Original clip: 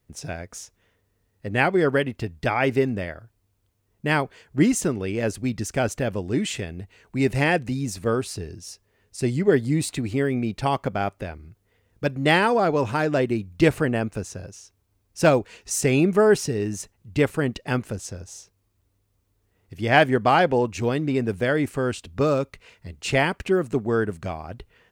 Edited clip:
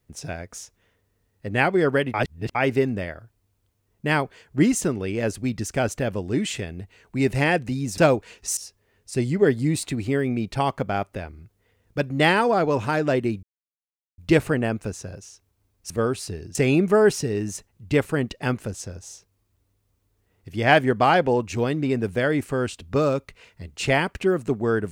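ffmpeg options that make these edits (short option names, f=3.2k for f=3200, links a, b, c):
-filter_complex "[0:a]asplit=8[a][b][c][d][e][f][g][h];[a]atrim=end=2.142[i];[b]atrim=start=2.138:end=2.552,asetpts=PTS-STARTPTS,areverse[j];[c]atrim=start=2.548:end=7.982[k];[d]atrim=start=15.208:end=15.802[l];[e]atrim=start=8.628:end=13.49,asetpts=PTS-STARTPTS,afade=t=out:st=4.858:d=0.004:c=hsin,apad=pad_dur=0.75[m];[f]atrim=start=13.49:end=15.212,asetpts=PTS-STARTPTS,afade=t=in:d=0.004:c=hsin[n];[g]atrim=start=7.978:end=8.632[o];[h]atrim=start=15.798[p];[i][j]acrossfade=d=0.004:c1=hsin:c2=hsin[q];[q][k]acrossfade=d=0.004:c1=hsin:c2=hsin[r];[r][l]acrossfade=d=0.004:c1=hsin:c2=hsin[s];[m][n]concat=n=2:v=0:a=1[t];[s][t]acrossfade=d=0.004:c1=hsin:c2=hsin[u];[u][o]acrossfade=d=0.004:c1=hsin:c2=hsin[v];[v][p]acrossfade=d=0.004:c1=hsin:c2=hsin"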